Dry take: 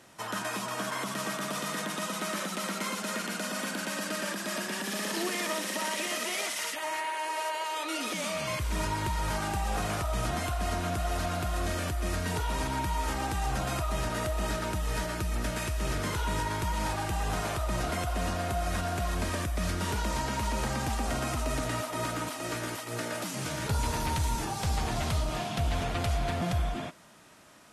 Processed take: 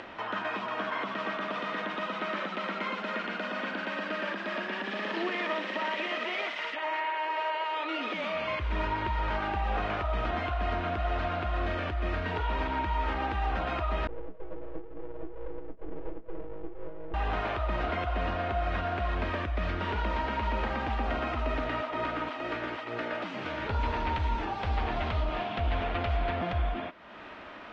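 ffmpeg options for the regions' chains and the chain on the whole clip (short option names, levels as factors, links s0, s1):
-filter_complex "[0:a]asettb=1/sr,asplit=3[s0][s1][s2];[s0]atrim=end=14.074[s3];[s1]atrim=start=14.07:end=17.14,asetpts=PTS-STARTPTS,afade=t=in:d=0.004:c=qsin,afade=t=out:st=3.066:d=0.004:c=qsin,asuperpass=centerf=200:order=20:qfactor=1,aeval=exprs='abs(val(0))':c=same,aecho=1:1:6.2:0.89,atrim=end_sample=135387[s4];[s2]atrim=start=17.136[s5];[s3][s4]acrossfade=d=0.004:c1=hsin:c2=qsin[s6];[s6][s5]acrossfade=d=0.004:c1=qsin:c2=hsin,lowpass=f=3100:w=0.5412,lowpass=f=3100:w=1.3066,equalizer=f=140:w=1.8:g=-14.5,acompressor=mode=upward:threshold=0.0158:ratio=2.5,volume=1.26"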